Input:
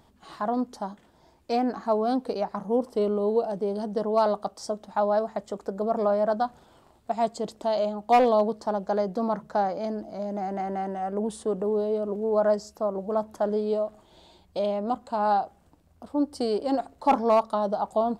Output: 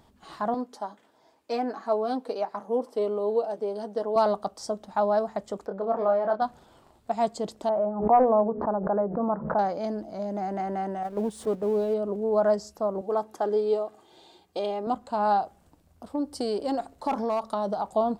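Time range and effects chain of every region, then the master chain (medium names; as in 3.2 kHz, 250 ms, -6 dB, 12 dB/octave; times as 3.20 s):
0.54–4.16 s: high-pass 140 Hz + tone controls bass -10 dB, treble -2 dB + comb of notches 180 Hz
5.66–6.42 s: low-pass 2.6 kHz + bass shelf 280 Hz -9 dB + doubling 26 ms -5 dB
7.69–9.59 s: low-pass 1.4 kHz 24 dB/octave + hum notches 60/120/180/240/300/360/420/480/540 Hz + swell ahead of each attack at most 90 dB/s
11.03–11.94 s: jump at every zero crossing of -44 dBFS + gate -29 dBFS, range -8 dB + upward compressor, threshold -34 dBFS
13.01–14.87 s: high-pass 180 Hz + comb 2.5 ms, depth 46%
15.40–17.88 s: treble shelf 5 kHz +4 dB + compression, threshold -23 dBFS
whole clip: none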